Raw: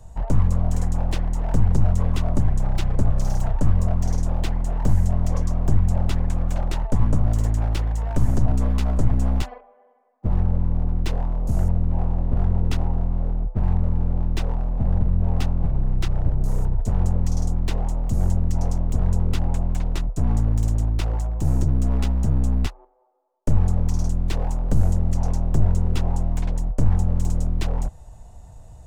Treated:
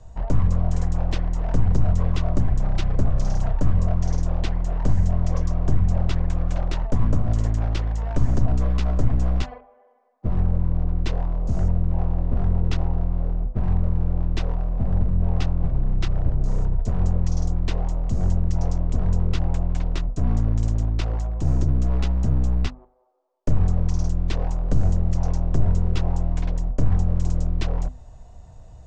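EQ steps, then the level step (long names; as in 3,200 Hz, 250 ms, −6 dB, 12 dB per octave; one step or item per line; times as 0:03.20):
low-pass filter 6,500 Hz 24 dB per octave
mains-hum notches 50/100/150/200/250 Hz
notch filter 860 Hz, Q 12
0.0 dB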